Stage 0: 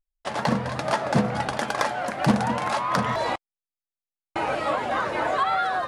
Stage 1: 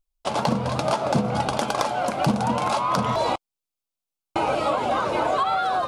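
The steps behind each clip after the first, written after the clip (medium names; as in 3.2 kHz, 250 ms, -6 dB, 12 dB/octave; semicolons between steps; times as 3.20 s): compression, threshold -23 dBFS, peak gain reduction 9 dB; peaking EQ 1.8 kHz -14.5 dB 0.37 oct; trim +5.5 dB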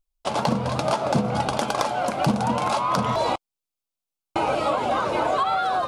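no audible change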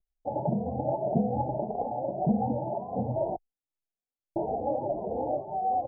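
steep low-pass 840 Hz 96 dB/octave; endless flanger 2.6 ms +1.8 Hz; trim -1.5 dB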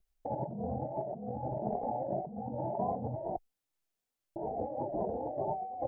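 compressor with a negative ratio -37 dBFS, ratio -1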